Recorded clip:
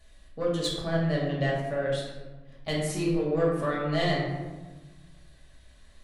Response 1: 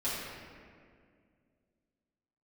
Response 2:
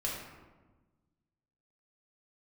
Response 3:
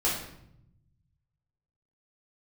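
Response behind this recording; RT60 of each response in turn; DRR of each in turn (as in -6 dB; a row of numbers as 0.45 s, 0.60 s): 2; 2.1 s, 1.3 s, 0.75 s; -11.5 dB, -4.5 dB, -7.0 dB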